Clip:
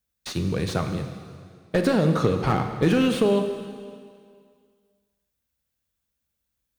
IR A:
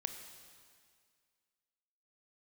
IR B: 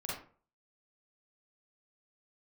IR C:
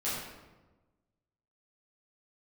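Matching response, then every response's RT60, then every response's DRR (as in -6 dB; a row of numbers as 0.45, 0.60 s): A; 2.0, 0.45, 1.2 s; 6.5, -6.5, -11.0 dB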